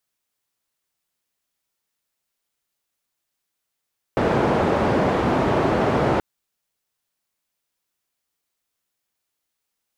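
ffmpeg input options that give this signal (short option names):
-f lavfi -i "anoisesrc=c=white:d=2.03:r=44100:seed=1,highpass=f=82,lowpass=f=680,volume=0.5dB"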